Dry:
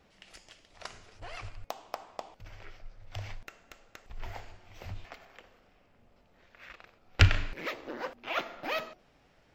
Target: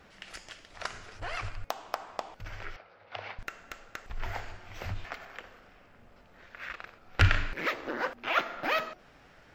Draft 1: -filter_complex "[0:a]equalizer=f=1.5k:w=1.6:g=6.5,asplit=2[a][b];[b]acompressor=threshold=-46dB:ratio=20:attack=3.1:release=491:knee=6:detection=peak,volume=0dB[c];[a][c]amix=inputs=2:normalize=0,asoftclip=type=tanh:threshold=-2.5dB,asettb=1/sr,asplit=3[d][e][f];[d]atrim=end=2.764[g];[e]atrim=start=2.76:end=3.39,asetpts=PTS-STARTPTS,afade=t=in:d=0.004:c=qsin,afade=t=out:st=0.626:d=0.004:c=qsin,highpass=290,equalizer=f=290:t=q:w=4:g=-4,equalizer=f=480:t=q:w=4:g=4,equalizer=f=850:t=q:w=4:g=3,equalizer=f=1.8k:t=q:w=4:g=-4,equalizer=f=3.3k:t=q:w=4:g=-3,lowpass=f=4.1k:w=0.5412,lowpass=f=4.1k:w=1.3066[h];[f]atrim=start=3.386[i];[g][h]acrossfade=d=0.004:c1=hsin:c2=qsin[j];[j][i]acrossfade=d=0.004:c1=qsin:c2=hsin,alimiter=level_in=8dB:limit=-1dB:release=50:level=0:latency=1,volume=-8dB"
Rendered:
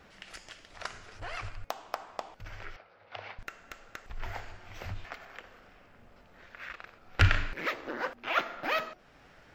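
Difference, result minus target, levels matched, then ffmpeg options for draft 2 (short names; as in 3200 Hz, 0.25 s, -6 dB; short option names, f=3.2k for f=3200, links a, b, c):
compressor: peak gain reduction +10.5 dB
-filter_complex "[0:a]equalizer=f=1.5k:w=1.6:g=6.5,asplit=2[a][b];[b]acompressor=threshold=-35dB:ratio=20:attack=3.1:release=491:knee=6:detection=peak,volume=0dB[c];[a][c]amix=inputs=2:normalize=0,asoftclip=type=tanh:threshold=-2.5dB,asettb=1/sr,asplit=3[d][e][f];[d]atrim=end=2.764[g];[e]atrim=start=2.76:end=3.39,asetpts=PTS-STARTPTS,afade=t=in:d=0.004:c=qsin,afade=t=out:st=0.626:d=0.004:c=qsin,highpass=290,equalizer=f=290:t=q:w=4:g=-4,equalizer=f=480:t=q:w=4:g=4,equalizer=f=850:t=q:w=4:g=3,equalizer=f=1.8k:t=q:w=4:g=-4,equalizer=f=3.3k:t=q:w=4:g=-3,lowpass=f=4.1k:w=0.5412,lowpass=f=4.1k:w=1.3066[h];[f]atrim=start=3.386[i];[g][h]acrossfade=d=0.004:c1=hsin:c2=qsin[j];[j][i]acrossfade=d=0.004:c1=qsin:c2=hsin,alimiter=level_in=8dB:limit=-1dB:release=50:level=0:latency=1,volume=-8dB"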